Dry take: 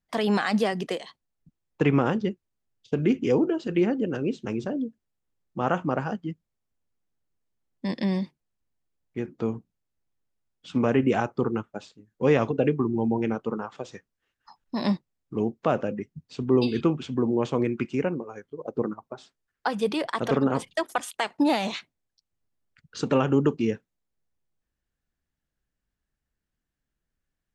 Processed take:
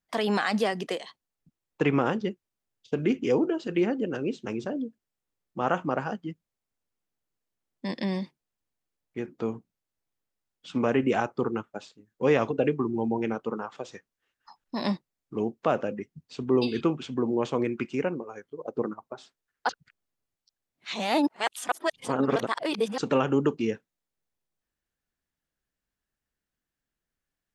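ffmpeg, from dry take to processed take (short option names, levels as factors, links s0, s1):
-filter_complex "[0:a]asplit=3[s0][s1][s2];[s0]atrim=end=19.692[s3];[s1]atrim=start=19.688:end=22.982,asetpts=PTS-STARTPTS,areverse[s4];[s2]atrim=start=22.978[s5];[s3][s4]acrossfade=d=0.004:c1=hsin:c2=hsin[s6];[s6][s5]acrossfade=d=0.004:c1=hsin:c2=hsin,lowshelf=f=190:g=-8.5"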